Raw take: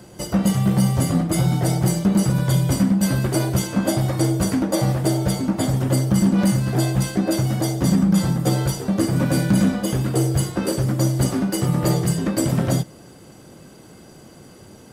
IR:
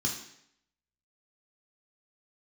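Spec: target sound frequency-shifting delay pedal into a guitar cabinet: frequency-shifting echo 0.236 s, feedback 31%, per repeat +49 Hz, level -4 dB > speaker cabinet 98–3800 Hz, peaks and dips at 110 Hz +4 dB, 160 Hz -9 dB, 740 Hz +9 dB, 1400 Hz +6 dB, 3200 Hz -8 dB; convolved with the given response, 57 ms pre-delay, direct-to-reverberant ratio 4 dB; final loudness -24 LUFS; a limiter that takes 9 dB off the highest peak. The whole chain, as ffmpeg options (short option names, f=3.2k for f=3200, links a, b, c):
-filter_complex "[0:a]alimiter=limit=-17dB:level=0:latency=1,asplit=2[a][b];[1:a]atrim=start_sample=2205,adelay=57[c];[b][c]afir=irnorm=-1:irlink=0,volume=-9dB[d];[a][d]amix=inputs=2:normalize=0,asplit=5[e][f][g][h][i];[f]adelay=236,afreqshift=49,volume=-4dB[j];[g]adelay=472,afreqshift=98,volume=-14.2dB[k];[h]adelay=708,afreqshift=147,volume=-24.3dB[l];[i]adelay=944,afreqshift=196,volume=-34.5dB[m];[e][j][k][l][m]amix=inputs=5:normalize=0,highpass=98,equalizer=f=110:t=q:w=4:g=4,equalizer=f=160:t=q:w=4:g=-9,equalizer=f=740:t=q:w=4:g=9,equalizer=f=1.4k:t=q:w=4:g=6,equalizer=f=3.2k:t=q:w=4:g=-8,lowpass=f=3.8k:w=0.5412,lowpass=f=3.8k:w=1.3066,volume=-1.5dB"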